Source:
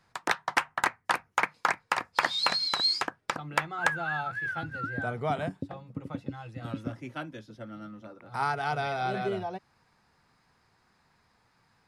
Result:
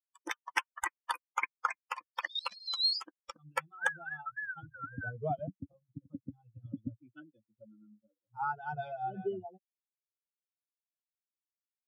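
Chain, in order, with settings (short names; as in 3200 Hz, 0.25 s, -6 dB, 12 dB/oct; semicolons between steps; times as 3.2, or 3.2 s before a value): per-bin expansion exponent 3; 2.11–2.66 level quantiser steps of 17 dB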